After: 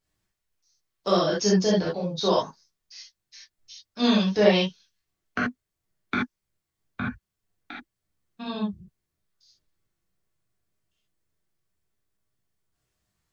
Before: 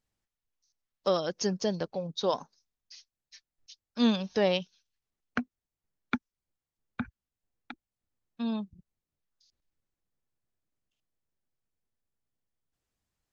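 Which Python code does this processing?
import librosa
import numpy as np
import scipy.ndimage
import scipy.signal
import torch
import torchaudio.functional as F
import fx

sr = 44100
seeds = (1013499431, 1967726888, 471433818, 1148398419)

y = fx.rev_gated(x, sr, seeds[0], gate_ms=100, shape='flat', drr_db=-7.0)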